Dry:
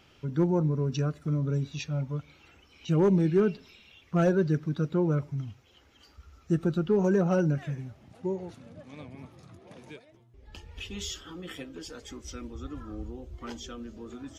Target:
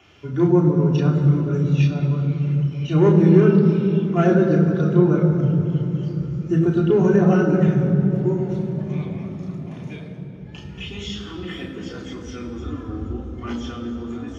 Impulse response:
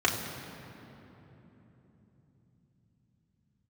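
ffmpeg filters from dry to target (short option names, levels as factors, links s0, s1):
-filter_complex "[0:a]acrossover=split=4600[s0][s1];[s1]acompressor=threshold=0.00141:ratio=4:attack=1:release=60[s2];[s0][s2]amix=inputs=2:normalize=0[s3];[1:a]atrim=start_sample=2205,asetrate=41454,aresample=44100[s4];[s3][s4]afir=irnorm=-1:irlink=0,volume=0.562"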